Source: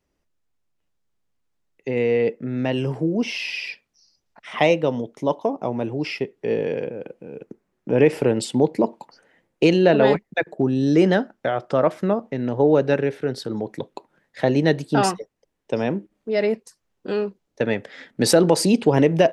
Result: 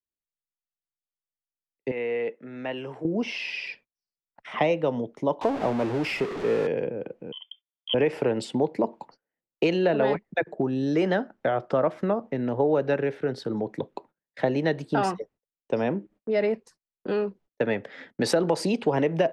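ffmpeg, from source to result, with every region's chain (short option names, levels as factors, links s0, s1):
-filter_complex "[0:a]asettb=1/sr,asplit=3[s0][s1][s2];[s0]atrim=end=1.914[s3];[s1]atrim=start=1.91:end=3.05,asetpts=PTS-STARTPTS,afade=t=in:d=0.004:c=qsin,afade=t=out:st=1.136:d=0.004:c=qsin,acrossover=split=3600[s4][s5];[s5]acompressor=threshold=0.00178:ratio=4:attack=1:release=60[s6];[s4][s6]amix=inputs=2:normalize=0,highpass=f=1100:p=1,bandreject=f=4800:w=5.9[s7];[s2]atrim=start=3.046[s8];[s3][s7]acrossfade=d=0.004:c1=hsin:c2=qsin[s9];[s9][s8]acrossfade=d=0.004:c1=qsin:c2=hsin,asettb=1/sr,asplit=3[s10][s11][s12];[s10]atrim=end=5.414[s13];[s11]atrim=start=5.41:end=6.67,asetpts=PTS-STARTPTS,afade=t=in:d=0.004:c=qsin,afade=t=out:st=1.256:d=0.004:c=qsin,aeval=exprs='val(0)+0.5*0.0531*sgn(val(0))':c=same,adynamicsmooth=sensitivity=4:basefreq=5300[s14];[s12]atrim=start=6.666[s15];[s13][s14]acrossfade=d=0.004:c1=hsin:c2=qsin[s16];[s16][s15]acrossfade=d=0.004:c1=qsin:c2=hsin,asettb=1/sr,asplit=3[s17][s18][s19];[s17]atrim=end=7.324[s20];[s18]atrim=start=7.32:end=7.94,asetpts=PTS-STARTPTS,afade=t=in:d=0.004:c=qsin,afade=t=out:st=0.616:d=0.004:c=qsin,equalizer=f=1800:w=1.7:g=-10.5,aecho=1:1:2.9:0.37,atrim=end_sample=27342,lowpass=f=3000:t=q:w=0.5098,lowpass=f=3000:t=q:w=0.6013,lowpass=f=3000:t=q:w=0.9,lowpass=f=3000:t=q:w=2.563,afreqshift=-3500[s21];[s19]atrim=start=7.936[s22];[s20][s21]acrossfade=d=0.004:c1=hsin:c2=qsin[s23];[s23][s22]acrossfade=d=0.004:c1=qsin:c2=hsin,lowpass=f=2100:p=1,agate=range=0.0355:threshold=0.00355:ratio=16:detection=peak,acrossover=split=110|530[s24][s25][s26];[s24]acompressor=threshold=0.00355:ratio=4[s27];[s25]acompressor=threshold=0.0501:ratio=4[s28];[s26]acompressor=threshold=0.0708:ratio=4[s29];[s27][s28][s29]amix=inputs=3:normalize=0"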